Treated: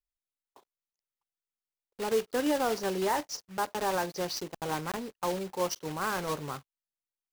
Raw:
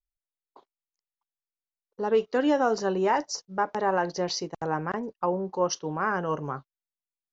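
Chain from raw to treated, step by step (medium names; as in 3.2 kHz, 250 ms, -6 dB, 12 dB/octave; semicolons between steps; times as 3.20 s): block-companded coder 3-bit; trim -5 dB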